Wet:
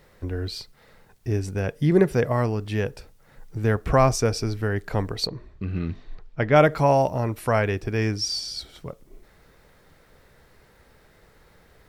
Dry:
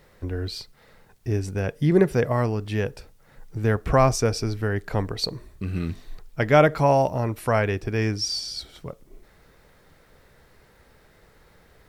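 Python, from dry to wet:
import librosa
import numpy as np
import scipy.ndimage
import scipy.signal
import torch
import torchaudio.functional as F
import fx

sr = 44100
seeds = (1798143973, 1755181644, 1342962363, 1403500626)

y = fx.air_absorb(x, sr, metres=180.0, at=(5.27, 6.56))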